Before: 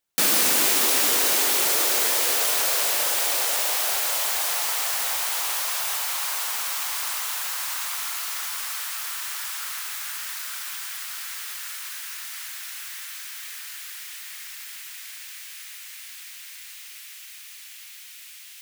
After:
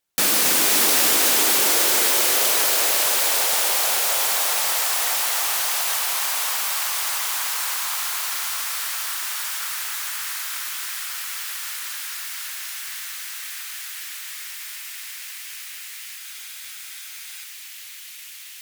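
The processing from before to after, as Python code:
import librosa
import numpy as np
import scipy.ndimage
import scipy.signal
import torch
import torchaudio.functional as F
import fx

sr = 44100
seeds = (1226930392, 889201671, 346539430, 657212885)

y = fx.tube_stage(x, sr, drive_db=12.0, bias=0.3)
y = fx.echo_heads(y, sr, ms=267, heads='first and second', feedback_pct=47, wet_db=-8)
y = fx.spec_freeze(y, sr, seeds[0], at_s=16.21, hold_s=1.25)
y = y * 10.0 ** (3.0 / 20.0)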